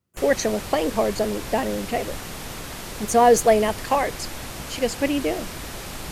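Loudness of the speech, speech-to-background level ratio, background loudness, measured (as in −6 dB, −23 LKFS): −22.0 LKFS, 12.0 dB, −34.0 LKFS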